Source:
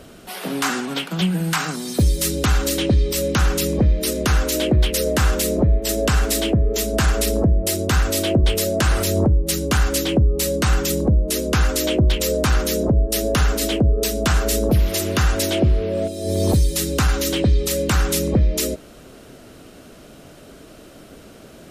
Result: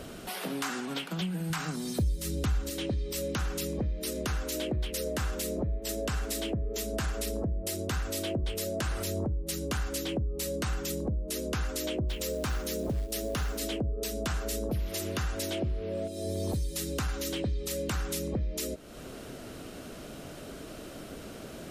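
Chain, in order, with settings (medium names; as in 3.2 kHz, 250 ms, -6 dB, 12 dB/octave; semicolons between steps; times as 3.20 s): 1.50–2.70 s: bass shelf 200 Hz +10 dB; compression 2.5:1, threshold -37 dBFS, peak gain reduction 21 dB; 12.09–13.62 s: companded quantiser 6-bit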